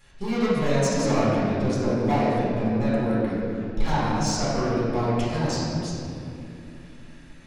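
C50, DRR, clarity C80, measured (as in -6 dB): -3.5 dB, -10.0 dB, -1.5 dB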